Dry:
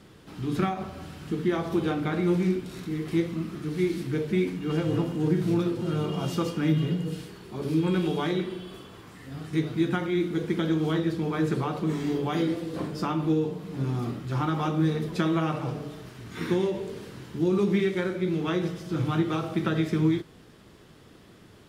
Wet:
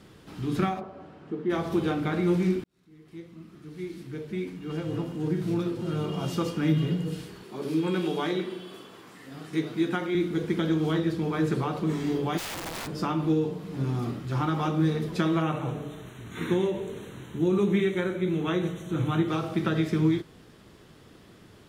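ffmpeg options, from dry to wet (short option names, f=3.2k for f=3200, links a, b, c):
-filter_complex "[0:a]asplit=3[a][b][c];[a]afade=t=out:st=0.79:d=0.02[d];[b]bandpass=f=550:t=q:w=0.85,afade=t=in:st=0.79:d=0.02,afade=t=out:st=1.49:d=0.02[e];[c]afade=t=in:st=1.49:d=0.02[f];[d][e][f]amix=inputs=3:normalize=0,asettb=1/sr,asplit=3[g][h][i];[g]atrim=end=7.434[j];[h]atrim=start=7.43:end=10.15,asetpts=PTS-STARTPTS,afade=t=in:d=0.004:c=qsin,afade=t=out:st=2.716:d=0.004:c=qsin,highpass=210[k];[i]atrim=start=10.146[l];[j][k]acrossfade=d=0.004:c1=hsin:c2=qsin[m];[m][l]acrossfade=d=0.004:c1=qsin:c2=hsin,asplit=3[n][o][p];[n]afade=t=out:st=12.37:d=0.02[q];[o]aeval=exprs='(mod(33.5*val(0)+1,2)-1)/33.5':c=same,afade=t=in:st=12.37:d=0.02,afade=t=out:st=12.86:d=0.02[r];[p]afade=t=in:st=12.86:d=0.02[s];[q][r][s]amix=inputs=3:normalize=0,asettb=1/sr,asplit=3[t][u][v];[t]atrim=end=15.424[w];[u]atrim=start=15.42:end=19.28,asetpts=PTS-STARTPTS,afade=t=in:d=0.004:c=qsin,afade=t=out:st=3.856:d=0.004:c=qsin,asuperstop=centerf=4900:order=8:qfactor=2.8[x];[v]atrim=start=19.276[y];[w][x]acrossfade=d=0.004:c1=hsin:c2=qsin[z];[z][y]acrossfade=d=0.004:c1=qsin:c2=hsin,asplit=2[aa][ab];[aa]atrim=end=2.64,asetpts=PTS-STARTPTS,afade=t=out:st=2.636:d=0.004:c=hsin[ac];[ab]atrim=start=2.64,asetpts=PTS-STARTPTS,afade=t=in:d=4.08[ad];[ac][ad]concat=n=2:v=0:a=1"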